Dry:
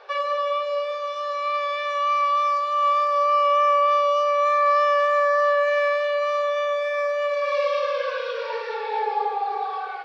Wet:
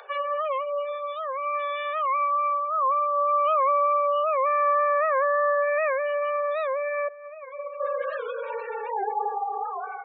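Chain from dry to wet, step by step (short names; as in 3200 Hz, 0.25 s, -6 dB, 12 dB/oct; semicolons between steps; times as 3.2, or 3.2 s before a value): 7.08–7.8 expander -14 dBFS; steep high-pass 390 Hz 96 dB/oct; spectral gate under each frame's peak -20 dB strong; upward compressor, threshold -40 dBFS; record warp 78 rpm, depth 160 cents; gain -3 dB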